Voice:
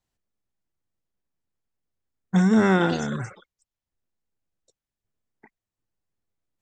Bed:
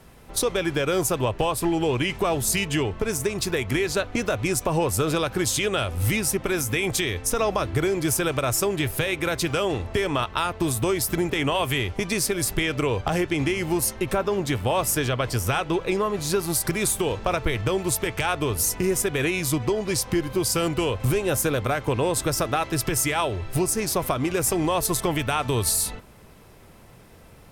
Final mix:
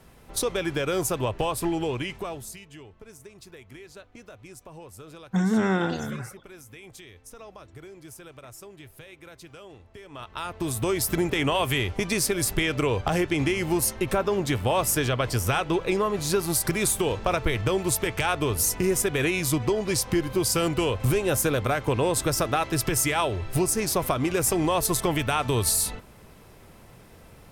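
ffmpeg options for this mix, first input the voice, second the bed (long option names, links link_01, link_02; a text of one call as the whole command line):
ffmpeg -i stem1.wav -i stem2.wav -filter_complex "[0:a]adelay=3000,volume=-4.5dB[link_01];[1:a]volume=18dB,afade=type=out:start_time=1.67:duration=0.92:silence=0.11885,afade=type=in:start_time=10.09:duration=0.99:silence=0.0891251[link_02];[link_01][link_02]amix=inputs=2:normalize=0" out.wav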